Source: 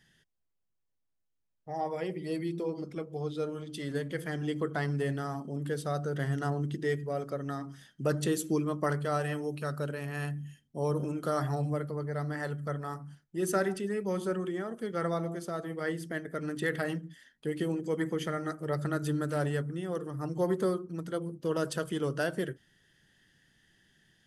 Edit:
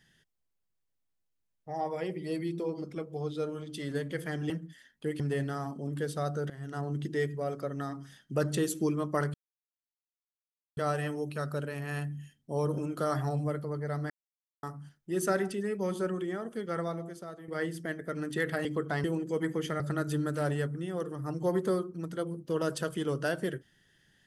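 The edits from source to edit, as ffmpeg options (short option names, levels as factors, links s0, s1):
-filter_complex "[0:a]asplit=11[s0][s1][s2][s3][s4][s5][s6][s7][s8][s9][s10];[s0]atrim=end=4.502[s11];[s1]atrim=start=16.908:end=17.612[s12];[s2]atrim=start=4.888:end=6.19,asetpts=PTS-STARTPTS,afade=t=out:st=1.298:d=0.004:c=hsin:silence=0.105925[s13];[s3]atrim=start=6.19:end=9.03,asetpts=PTS-STARTPTS,afade=t=in:d=0.52:silence=0.105925,afade=t=out:st=2.836:d=0.004:c=hsin,apad=pad_dur=1.43[s14];[s4]atrim=start=9.03:end=12.36,asetpts=PTS-STARTPTS,afade=t=in:d=0.004:c=hsin,afade=t=out:st=3.326:d=0.004:c=hsin[s15];[s5]atrim=start=12.36:end=12.89,asetpts=PTS-STARTPTS,volume=0[s16];[s6]atrim=start=12.89:end=15.74,asetpts=PTS-STARTPTS,afade=t=in:d=0.004:c=hsin,afade=t=out:st=1.87:d=0.98:silence=0.281838[s17];[s7]atrim=start=15.74:end=16.912,asetpts=PTS-STARTPTS,afade=t=in:d=0.004:c=hsin:silence=0.281838[s18];[s8]atrim=start=4.498:end=4.892[s19];[s9]atrim=start=17.608:end=18.372[s20];[s10]atrim=start=18.748[s21];[s11][s12]acrossfade=d=0.004:c1=hsin:c2=hsin[s22];[s13][s14][s15][s16][s17][s18]concat=n=6:v=0:a=1[s23];[s22][s23]acrossfade=d=0.004:c1=hsin:c2=hsin[s24];[s24][s19]acrossfade=d=0.004:c1=hsin:c2=hsin[s25];[s25][s20]acrossfade=d=0.004:c1=hsin:c2=hsin[s26];[s26][s21]acrossfade=d=0.004:c1=hsin:c2=hsin"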